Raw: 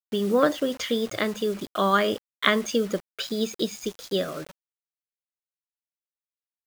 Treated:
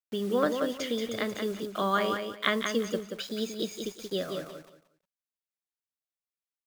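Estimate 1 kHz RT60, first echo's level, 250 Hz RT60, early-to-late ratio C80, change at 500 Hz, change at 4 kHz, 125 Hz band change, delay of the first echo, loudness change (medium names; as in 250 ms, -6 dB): no reverb, -6.0 dB, no reverb, no reverb, -5.0 dB, -5.0 dB, -5.0 dB, 180 ms, -5.0 dB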